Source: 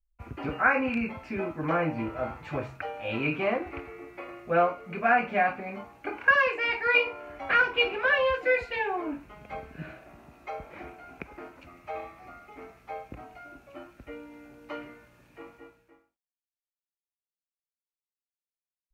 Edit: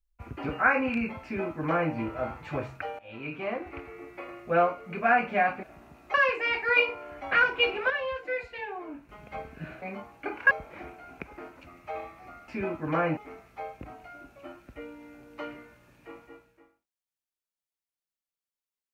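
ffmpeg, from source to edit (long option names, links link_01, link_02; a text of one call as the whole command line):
ffmpeg -i in.wav -filter_complex "[0:a]asplit=10[link_01][link_02][link_03][link_04][link_05][link_06][link_07][link_08][link_09][link_10];[link_01]atrim=end=2.99,asetpts=PTS-STARTPTS,afade=type=out:start_time=2.986:duration=0.004:curve=hsin:silence=0.125893[link_11];[link_02]atrim=start=2.99:end=5.632,asetpts=PTS-STARTPTS,afade=type=in:duration=1.05:silence=0.125893[link_12];[link_03]atrim=start=9.998:end=10.512[link_13];[link_04]atrim=start=6.318:end=8.082[link_14];[link_05]atrim=start=8.078:end=9.272,asetpts=PTS-STARTPTS,volume=-7.5dB[link_15];[link_06]atrim=start=9.268:end=10.002[link_16];[link_07]atrim=start=5.628:end=6.322[link_17];[link_08]atrim=start=10.508:end=12.482[link_18];[link_09]atrim=start=1.238:end=1.932[link_19];[link_10]atrim=start=12.478[link_20];[link_11][link_12]concat=n=2:v=0:a=1[link_21];[link_21][link_13]acrossfade=duration=0.004:curve1=hsin:curve2=hsin[link_22];[link_22][link_14]acrossfade=duration=0.004:curve1=hsin:curve2=hsin[link_23];[link_23][link_15]acrossfade=duration=0.004:curve1=hsin:curve2=hsin[link_24];[link_24][link_16]acrossfade=duration=0.004:curve1=hsin:curve2=hsin[link_25];[link_25][link_17]acrossfade=duration=0.004:curve1=hsin:curve2=hsin[link_26];[link_26][link_18]acrossfade=duration=0.004:curve1=hsin:curve2=hsin[link_27];[link_27][link_19]acrossfade=duration=0.004:curve1=hsin:curve2=hsin[link_28];[link_28][link_20]acrossfade=duration=0.004:curve1=hsin:curve2=hsin" out.wav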